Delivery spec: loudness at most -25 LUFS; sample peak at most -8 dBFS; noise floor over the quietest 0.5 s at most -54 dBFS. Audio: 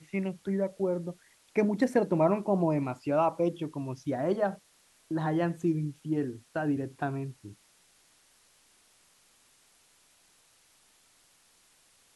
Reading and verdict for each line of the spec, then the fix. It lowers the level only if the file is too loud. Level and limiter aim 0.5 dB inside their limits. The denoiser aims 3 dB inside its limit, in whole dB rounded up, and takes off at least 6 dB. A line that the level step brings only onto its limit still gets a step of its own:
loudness -30.5 LUFS: pass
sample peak -13.0 dBFS: pass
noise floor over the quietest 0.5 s -64 dBFS: pass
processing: none needed

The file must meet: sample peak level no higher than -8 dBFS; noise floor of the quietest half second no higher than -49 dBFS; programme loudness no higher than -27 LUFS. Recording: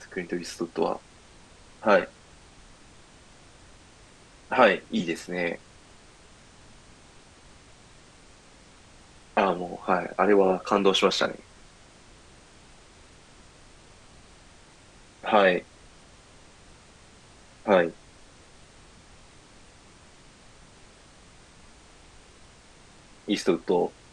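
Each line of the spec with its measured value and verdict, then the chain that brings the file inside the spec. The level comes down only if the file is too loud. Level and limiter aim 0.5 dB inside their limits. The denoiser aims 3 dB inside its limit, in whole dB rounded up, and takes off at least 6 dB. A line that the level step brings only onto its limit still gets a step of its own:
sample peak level -5.0 dBFS: fail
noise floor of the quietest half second -53 dBFS: pass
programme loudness -25.0 LUFS: fail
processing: trim -2.5 dB; peak limiter -8.5 dBFS

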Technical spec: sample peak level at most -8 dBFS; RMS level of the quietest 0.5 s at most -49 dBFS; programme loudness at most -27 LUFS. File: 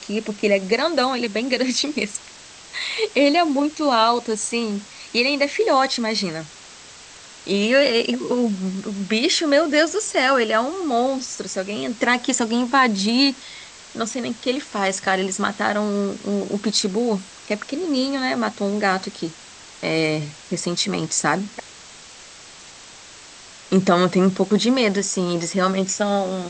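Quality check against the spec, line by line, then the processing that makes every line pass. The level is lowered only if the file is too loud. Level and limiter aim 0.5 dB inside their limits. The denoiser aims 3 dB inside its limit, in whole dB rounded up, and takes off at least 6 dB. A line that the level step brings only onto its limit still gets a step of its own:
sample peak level -4.0 dBFS: fail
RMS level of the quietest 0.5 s -43 dBFS: fail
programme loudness -20.5 LUFS: fail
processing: trim -7 dB

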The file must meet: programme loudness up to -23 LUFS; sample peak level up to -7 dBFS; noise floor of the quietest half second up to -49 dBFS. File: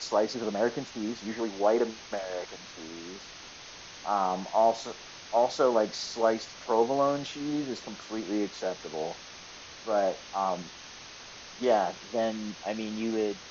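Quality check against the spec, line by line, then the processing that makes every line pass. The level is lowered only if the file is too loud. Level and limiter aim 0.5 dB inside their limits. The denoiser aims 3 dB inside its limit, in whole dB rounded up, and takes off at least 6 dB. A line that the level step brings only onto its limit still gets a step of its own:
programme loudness -30.0 LUFS: pass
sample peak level -11.5 dBFS: pass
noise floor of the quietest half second -47 dBFS: fail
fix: noise reduction 6 dB, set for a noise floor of -47 dBFS

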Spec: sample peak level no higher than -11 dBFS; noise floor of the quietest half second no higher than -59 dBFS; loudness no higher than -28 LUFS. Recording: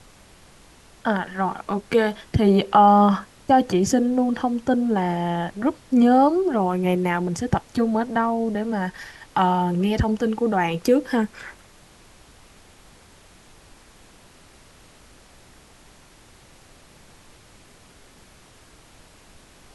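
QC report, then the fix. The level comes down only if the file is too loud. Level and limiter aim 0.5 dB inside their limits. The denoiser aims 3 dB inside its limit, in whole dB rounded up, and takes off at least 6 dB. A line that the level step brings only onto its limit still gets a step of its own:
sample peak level -5.0 dBFS: fail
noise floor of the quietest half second -51 dBFS: fail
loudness -21.0 LUFS: fail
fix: noise reduction 6 dB, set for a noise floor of -51 dBFS; trim -7.5 dB

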